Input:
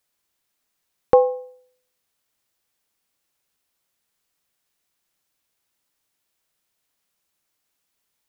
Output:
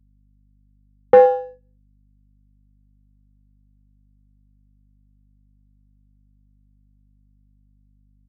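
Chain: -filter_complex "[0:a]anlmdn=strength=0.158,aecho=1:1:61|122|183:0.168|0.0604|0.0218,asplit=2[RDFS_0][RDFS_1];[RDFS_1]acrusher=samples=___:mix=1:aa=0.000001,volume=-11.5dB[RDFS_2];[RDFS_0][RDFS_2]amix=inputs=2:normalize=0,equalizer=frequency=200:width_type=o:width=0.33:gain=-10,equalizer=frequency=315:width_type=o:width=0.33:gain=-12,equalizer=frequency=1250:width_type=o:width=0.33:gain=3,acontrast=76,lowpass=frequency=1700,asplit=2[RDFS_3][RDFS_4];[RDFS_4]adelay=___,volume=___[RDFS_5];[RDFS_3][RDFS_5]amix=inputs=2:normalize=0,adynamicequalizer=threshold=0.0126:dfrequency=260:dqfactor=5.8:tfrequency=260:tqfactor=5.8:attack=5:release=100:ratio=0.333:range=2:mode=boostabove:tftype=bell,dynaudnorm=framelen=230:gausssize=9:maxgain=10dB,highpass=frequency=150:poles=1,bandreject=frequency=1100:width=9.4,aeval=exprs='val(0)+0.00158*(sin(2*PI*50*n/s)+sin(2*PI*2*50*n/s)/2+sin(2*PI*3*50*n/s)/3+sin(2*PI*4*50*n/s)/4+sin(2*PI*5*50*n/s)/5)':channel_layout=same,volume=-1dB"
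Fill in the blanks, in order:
20, 36, -12dB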